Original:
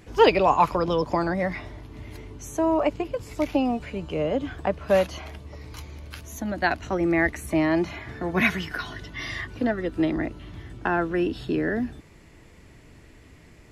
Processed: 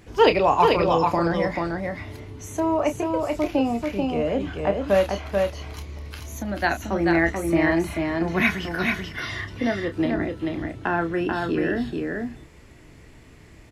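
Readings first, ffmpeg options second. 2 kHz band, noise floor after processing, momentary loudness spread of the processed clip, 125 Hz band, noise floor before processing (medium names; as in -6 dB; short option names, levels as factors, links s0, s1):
+2.5 dB, -48 dBFS, 13 LU, +2.5 dB, -51 dBFS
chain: -filter_complex "[0:a]asplit=2[s0][s1];[s1]adelay=30,volume=0.355[s2];[s0][s2]amix=inputs=2:normalize=0,aecho=1:1:437:0.668"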